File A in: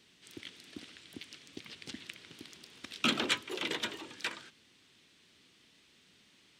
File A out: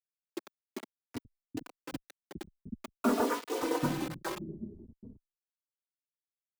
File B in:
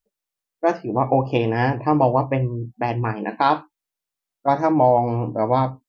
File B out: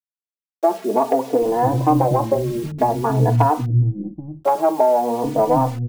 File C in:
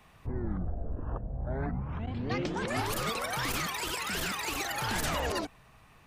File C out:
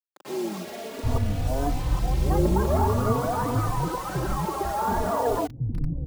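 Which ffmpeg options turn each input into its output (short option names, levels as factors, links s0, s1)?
-filter_complex "[0:a]lowpass=f=1100:w=0.5412,lowpass=f=1100:w=1.3066,aemphasis=mode=reproduction:type=cd,acompressor=threshold=0.0794:ratio=8,aeval=exprs='0.211*(cos(1*acos(clip(val(0)/0.211,-1,1)))-cos(1*PI/2))+0.0133*(cos(2*acos(clip(val(0)/0.211,-1,1)))-cos(2*PI/2))':c=same,acontrast=74,acrusher=bits=6:mix=0:aa=0.000001,acrossover=split=250[s0][s1];[s0]adelay=780[s2];[s2][s1]amix=inputs=2:normalize=0,asplit=2[s3][s4];[s4]adelay=3.4,afreqshift=0.49[s5];[s3][s5]amix=inputs=2:normalize=1,volume=2.11"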